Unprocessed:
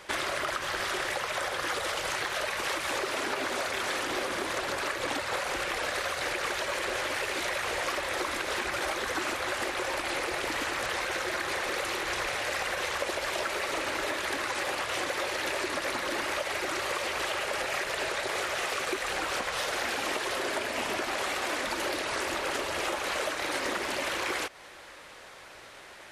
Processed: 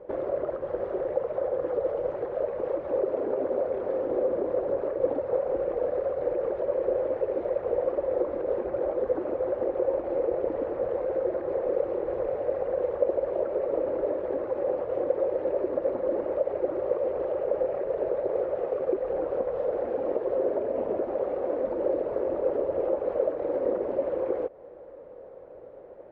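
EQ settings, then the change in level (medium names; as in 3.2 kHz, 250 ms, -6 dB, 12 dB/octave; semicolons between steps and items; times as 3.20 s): resonant low-pass 510 Hz, resonance Q 4.9; 0.0 dB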